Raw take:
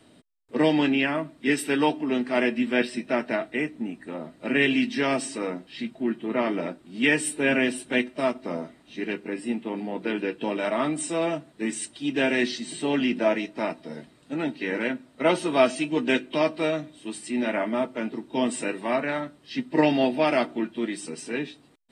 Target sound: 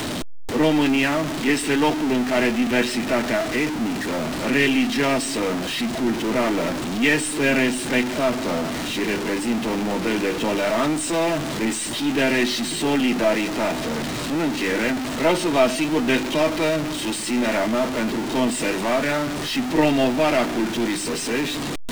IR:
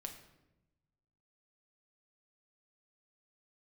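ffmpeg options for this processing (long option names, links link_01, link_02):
-filter_complex "[0:a]aeval=exprs='val(0)+0.5*0.0891*sgn(val(0))':channel_layout=same,aeval=exprs='0.596*(cos(1*acos(clip(val(0)/0.596,-1,1)))-cos(1*PI/2))+0.0211*(cos(6*acos(clip(val(0)/0.596,-1,1)))-cos(6*PI/2))':channel_layout=same,acrossover=split=8600[link_01][link_02];[link_02]acompressor=threshold=-40dB:ratio=4:attack=1:release=60[link_03];[link_01][link_03]amix=inputs=2:normalize=0"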